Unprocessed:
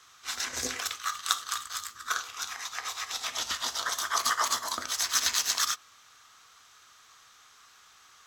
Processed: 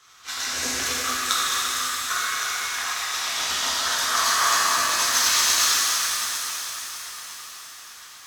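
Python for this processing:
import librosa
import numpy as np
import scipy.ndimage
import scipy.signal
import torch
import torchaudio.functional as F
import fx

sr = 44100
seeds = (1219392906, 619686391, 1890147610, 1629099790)

y = fx.echo_swing(x, sr, ms=959, ratio=3, feedback_pct=42, wet_db=-16.0)
y = fx.rev_shimmer(y, sr, seeds[0], rt60_s=3.7, semitones=7, shimmer_db=-8, drr_db=-7.5)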